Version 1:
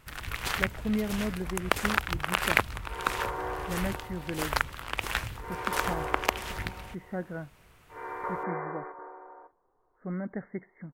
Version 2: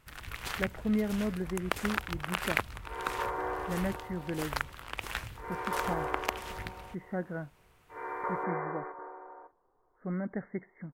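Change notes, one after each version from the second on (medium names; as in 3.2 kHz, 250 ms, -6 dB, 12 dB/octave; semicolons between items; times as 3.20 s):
first sound -6.0 dB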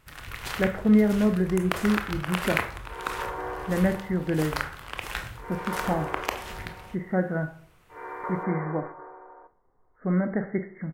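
speech +7.0 dB; reverb: on, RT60 0.50 s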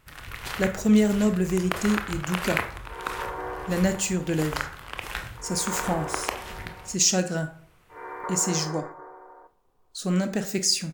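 speech: remove brick-wall FIR low-pass 2.2 kHz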